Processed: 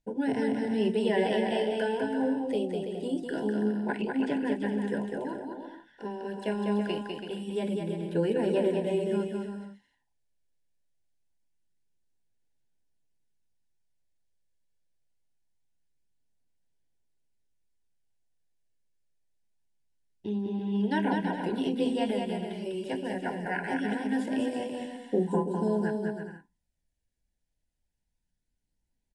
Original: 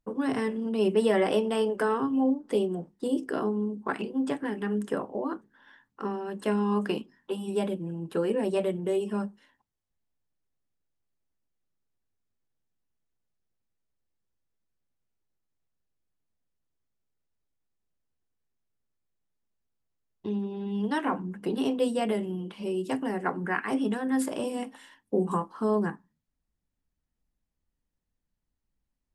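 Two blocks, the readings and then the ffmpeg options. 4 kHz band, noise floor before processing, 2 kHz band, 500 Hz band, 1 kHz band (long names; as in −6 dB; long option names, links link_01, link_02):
+0.5 dB, −83 dBFS, 0.0 dB, −1.0 dB, −2.0 dB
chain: -filter_complex "[0:a]acrossover=split=4500[link_01][link_02];[link_02]acompressor=threshold=-57dB:ratio=4:attack=1:release=60[link_03];[link_01][link_03]amix=inputs=2:normalize=0,highshelf=frequency=2800:gain=4,aphaser=in_gain=1:out_gain=1:delay=1.8:decay=0.28:speed=0.24:type=sinusoidal,asuperstop=centerf=1200:order=20:qfactor=3.1,aecho=1:1:200|330|414.5|469.4|505.1:0.631|0.398|0.251|0.158|0.1,volume=-3.5dB" -ar 24000 -c:a aac -b:a 64k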